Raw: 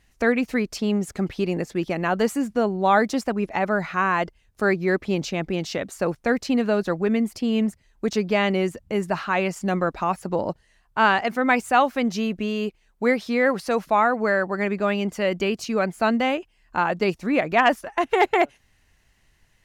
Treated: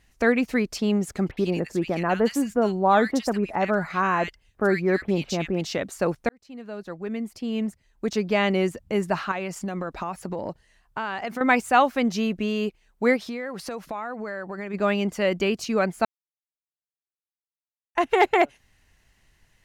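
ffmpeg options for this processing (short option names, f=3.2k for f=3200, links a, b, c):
-filter_complex "[0:a]asettb=1/sr,asplit=3[a][b][c];[a]atrim=end=1.314[d];[b]atrim=start=1.31:end=5.61,asetpts=PTS-STARTPTS,afade=t=in:d=0.004:c=qsin,afade=t=out:st=4.296:d=0.004:c=qsin,acrossover=split=1800[e][f];[f]adelay=60[g];[e][g]amix=inputs=2:normalize=0,atrim=end_sample=189630[h];[c]atrim=start=5.606[i];[d][h]acrossfade=d=0.004:c1=hsin:c2=qsin[j];[j][i]acrossfade=d=0.004:c1=qsin:c2=hsin,asettb=1/sr,asplit=3[k][l][m];[k]atrim=end=9.314[n];[l]atrim=start=9.31:end=11.41,asetpts=PTS-STARTPTS,afade=t=in:d=0.004:c=qsin,afade=t=out:st=2.096:d=0.004:c=qsin,acompressor=threshold=-25dB:ratio=10:attack=3.2:release=140:knee=1:detection=peak[o];[m]atrim=start=11.406[p];[n][o]acrossfade=d=0.004:c1=hsin:c2=qsin[q];[q][p]acrossfade=d=0.004:c1=qsin:c2=hsin,asplit=3[r][s][t];[r]afade=t=out:st=13.16:d=0.02[u];[s]acompressor=threshold=-29dB:ratio=6:attack=3.2:release=140:knee=1:detection=peak,afade=t=in:st=13.16:d=0.02,afade=t=out:st=14.73:d=0.02[v];[t]afade=t=in:st=14.73:d=0.02[w];[u][v][w]amix=inputs=3:normalize=0,asplit=4[x][y][z][aa];[x]atrim=end=6.29,asetpts=PTS-STARTPTS,afade=t=out:st=6.286:d=0.004:c=hsin[ab];[y]atrim=start=6.29:end=16.05,asetpts=PTS-STARTPTS,afade=t=in:d=2.35,afade=t=out:st=9.756:d=0.004:c=hsin[ac];[z]atrim=start=16.05:end=17.95,asetpts=PTS-STARTPTS,volume=0[ad];[aa]atrim=start=17.95,asetpts=PTS-STARTPTS,afade=t=in:d=0.004:c=hsin[ae];[ab][ac][ad][ae]concat=n=4:v=0:a=1"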